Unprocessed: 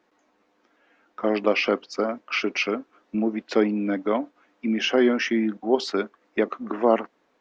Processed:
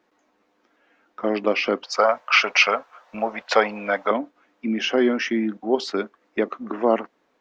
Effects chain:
0:01.83–0:04.11: drawn EQ curve 100 Hz 0 dB, 330 Hz −14 dB, 530 Hz +8 dB, 900 Hz +14 dB, 2,300 Hz +9 dB

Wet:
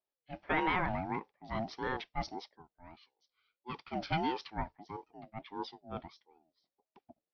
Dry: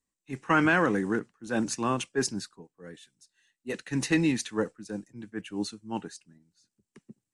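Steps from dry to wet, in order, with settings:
downsampling to 11,025 Hz
ring modulator whose carrier an LFO sweeps 540 Hz, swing 20%, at 1.6 Hz
level −5.5 dB

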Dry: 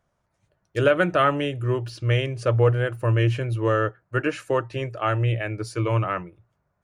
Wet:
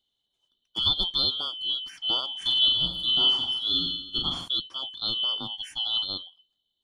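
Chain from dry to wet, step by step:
band-splitting scrambler in four parts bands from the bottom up 2413
0:02.31–0:04.48: reverse bouncing-ball delay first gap 40 ms, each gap 1.25×, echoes 5
level −6 dB

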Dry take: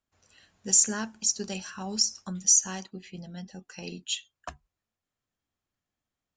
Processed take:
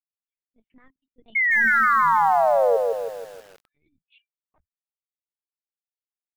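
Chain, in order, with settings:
spectral dynamics exaggerated over time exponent 2
source passing by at 0:01.68, 53 m/s, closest 3.1 metres
parametric band 500 Hz −8 dB 0.3 octaves
amplitude modulation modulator 74 Hz, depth 20%
low-shelf EQ 63 Hz +8.5 dB
linear-prediction vocoder at 8 kHz pitch kept
sound drawn into the spectrogram fall, 0:01.35–0:02.77, 450–2,200 Hz −28 dBFS
feedback echo at a low word length 160 ms, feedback 55%, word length 9 bits, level −3 dB
level +8 dB

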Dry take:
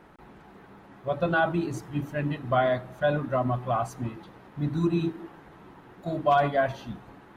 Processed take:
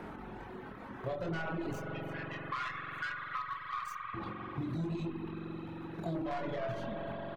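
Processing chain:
stylus tracing distortion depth 0.14 ms
0:01.73–0:04.14: elliptic high-pass filter 1,100 Hz, stop band 40 dB
brickwall limiter −23.5 dBFS, peak gain reduction 11 dB
output level in coarse steps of 12 dB
high-shelf EQ 3,500 Hz −8 dB
double-tracking delay 24 ms −4 dB
flutter between parallel walls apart 10.6 metres, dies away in 0.21 s
spring reverb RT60 3.9 s, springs 43 ms, chirp 30 ms, DRR −1 dB
soft clipping −30 dBFS, distortion −13 dB
reverb reduction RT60 1.1 s
multiband upward and downward compressor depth 70%
level +1.5 dB

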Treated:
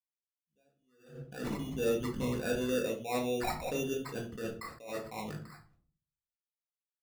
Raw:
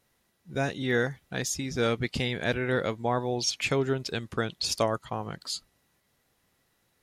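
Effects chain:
spectral envelope exaggerated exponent 2
noise gate −57 dBFS, range −58 dB
low-pass filter 7,600 Hz 24 dB per octave, from 0:04.63 2,900 Hz
decimation without filtering 14×
rectangular room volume 350 cubic metres, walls furnished, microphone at 1.9 metres
level that may rise only so fast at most 110 dB per second
level −7.5 dB

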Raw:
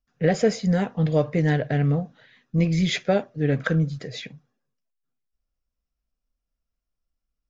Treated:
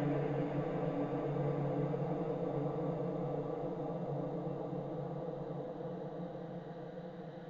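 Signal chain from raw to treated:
harmonic and percussive parts rebalanced harmonic −15 dB
extreme stretch with random phases 39×, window 0.50 s, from 0:01.94
level −1.5 dB

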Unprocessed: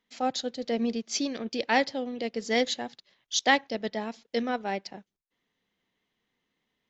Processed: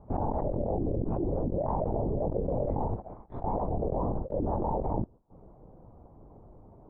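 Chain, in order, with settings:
phase-vocoder pitch shift without resampling +2.5 semitones
linear-prediction vocoder at 8 kHz whisper
Butterworth low-pass 930 Hz 36 dB per octave
envelope flattener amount 100%
level −5.5 dB

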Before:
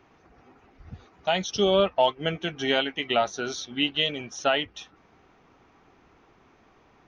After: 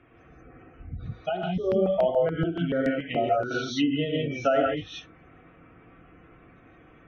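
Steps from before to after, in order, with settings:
parametric band 910 Hz −12 dB 0.42 octaves
notch filter 400 Hz, Q 12
gate on every frequency bin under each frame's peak −20 dB strong
reverb whose tail is shaped and stops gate 200 ms rising, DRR −2.5 dB
treble cut that deepens with the level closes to 1,100 Hz, closed at −21 dBFS
high-shelf EQ 4,900 Hz −7 dB
notch comb filter 200 Hz
0:01.29–0:03.51: step-sequenced phaser 7 Hz 530–4,900 Hz
level +4 dB

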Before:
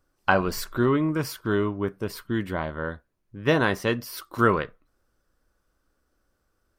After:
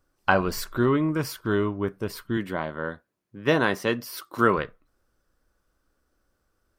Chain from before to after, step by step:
0:02.37–0:04.58: high-pass filter 140 Hz 12 dB per octave

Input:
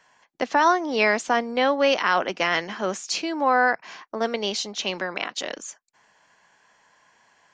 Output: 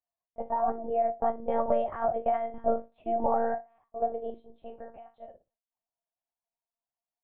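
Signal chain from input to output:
spectral dynamics exaggerated over time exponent 1.5
source passing by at 0:02.74, 6 m/s, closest 3.4 metres
downward compressor, threshold −29 dBFS, peak gain reduction 8 dB
low-pass with resonance 670 Hz, resonance Q 4.9
flutter between parallel walls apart 5.2 metres, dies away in 0.25 s
wrong playback speed 24 fps film run at 25 fps
one-pitch LPC vocoder at 8 kHz 230 Hz

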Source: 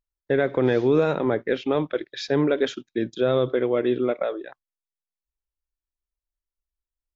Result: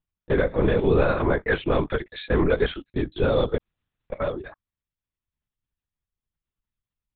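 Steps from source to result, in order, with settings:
0:01.01–0:02.89: dynamic equaliser 1,400 Hz, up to +5 dB, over −37 dBFS, Q 0.83
0:03.57–0:04.12: fill with room tone
linear-prediction vocoder at 8 kHz whisper

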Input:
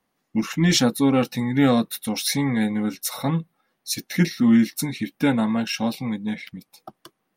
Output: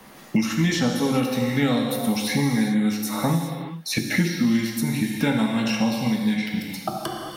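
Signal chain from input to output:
reverb whose tail is shaped and stops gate 430 ms falling, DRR 0.5 dB
multiband upward and downward compressor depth 100%
level −4 dB

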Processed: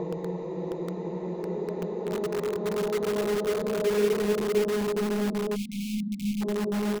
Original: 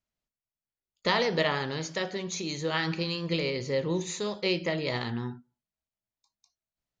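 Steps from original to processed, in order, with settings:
comb filter 4.6 ms, depth 33%
on a send: repeating echo 185 ms, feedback 15%, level −11 dB
on the sum: extreme stretch with random phases 31×, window 0.25 s, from 0:04.09
low-pass filter sweep 750 Hz → 290 Hz, 0:03.25–0:05.22
in parallel at −6.5 dB: wrap-around overflow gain 25.5 dB
on the sum: time-frequency box erased 0:05.55–0:06.42, 270–2,100 Hz

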